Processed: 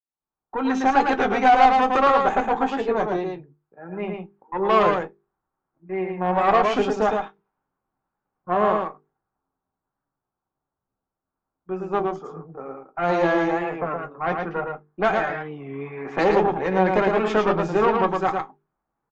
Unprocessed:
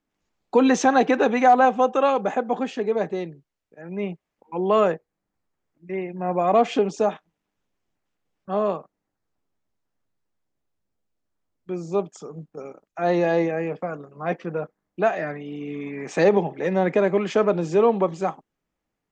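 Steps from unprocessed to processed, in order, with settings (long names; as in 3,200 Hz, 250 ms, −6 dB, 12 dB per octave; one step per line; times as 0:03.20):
fade in at the beginning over 1.62 s
flat-topped bell 1,100 Hz +8 dB 1.2 octaves
mains-hum notches 50/100/150/200/250/300/350/400/450 Hz
in parallel at +2 dB: brickwall limiter −11.5 dBFS, peak gain reduction 10 dB
on the sum: tube saturation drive 7 dB, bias 0.65
low-pass that shuts in the quiet parts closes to 1,200 Hz, open at −12.5 dBFS
single-tap delay 111 ms −4 dB
on a send at −7 dB: convolution reverb RT60 0.15 s, pre-delay 3 ms
on the sum: wow of a warped record 33 1/3 rpm, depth 100 cents
level −5 dB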